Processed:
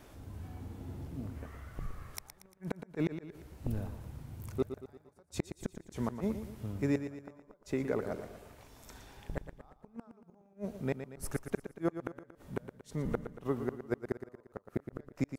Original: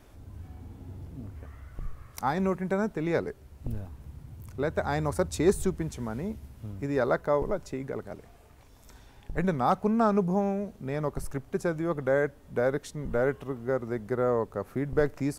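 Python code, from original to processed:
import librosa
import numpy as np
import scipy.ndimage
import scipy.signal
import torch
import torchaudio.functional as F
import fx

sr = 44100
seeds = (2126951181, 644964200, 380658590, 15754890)

y = fx.low_shelf(x, sr, hz=89.0, db=-7.5)
y = fx.gate_flip(y, sr, shuts_db=-21.0, range_db=-40)
y = fx.echo_feedback(y, sr, ms=116, feedback_pct=47, wet_db=-10)
y = F.gain(torch.from_numpy(y), 2.0).numpy()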